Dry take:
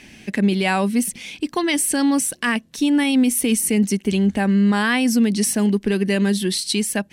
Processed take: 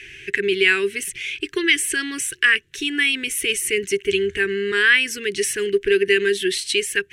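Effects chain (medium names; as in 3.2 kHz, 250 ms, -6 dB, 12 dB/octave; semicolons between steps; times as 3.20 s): FFT filter 130 Hz 0 dB, 230 Hz -25 dB, 400 Hz +8 dB, 590 Hz -27 dB, 850 Hz -24 dB, 1.6 kHz +8 dB, 2.9 kHz +8 dB, 4.6 kHz -5 dB, 6.7 kHz 0 dB, 13 kHz -6 dB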